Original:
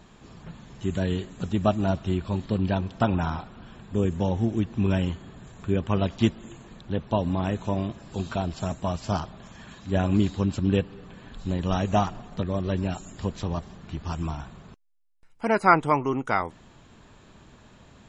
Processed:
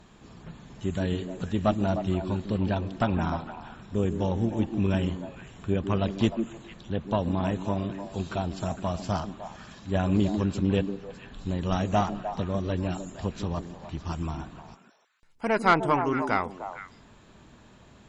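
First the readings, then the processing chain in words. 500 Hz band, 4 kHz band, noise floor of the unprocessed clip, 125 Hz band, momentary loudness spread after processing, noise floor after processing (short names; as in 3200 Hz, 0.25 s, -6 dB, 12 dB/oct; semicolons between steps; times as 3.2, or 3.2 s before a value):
-1.0 dB, -1.0 dB, -53 dBFS, -2.0 dB, 14 LU, -55 dBFS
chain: delay with a stepping band-pass 0.152 s, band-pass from 280 Hz, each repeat 1.4 oct, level -4 dB; tube stage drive 11 dB, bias 0.45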